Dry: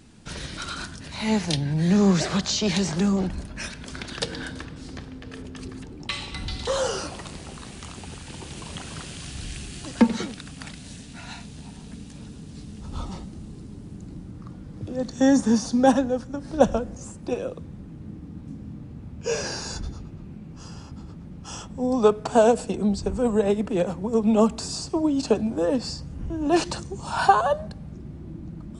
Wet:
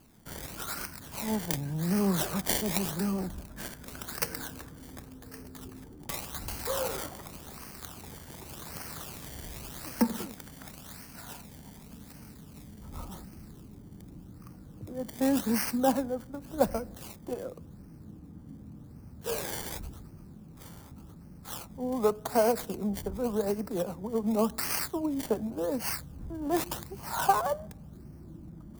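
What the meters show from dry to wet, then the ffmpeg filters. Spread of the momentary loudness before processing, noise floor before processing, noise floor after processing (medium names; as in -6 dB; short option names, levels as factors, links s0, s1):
21 LU, -42 dBFS, -50 dBFS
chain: -filter_complex "[0:a]equalizer=f=2200:t=o:w=0.77:g=-4.5,acrossover=split=1700[s0][s1];[s1]acrusher=samples=23:mix=1:aa=0.000001:lfo=1:lforange=23:lforate=0.88[s2];[s0][s2]amix=inputs=2:normalize=0,crystalizer=i=7:c=0,volume=0.355"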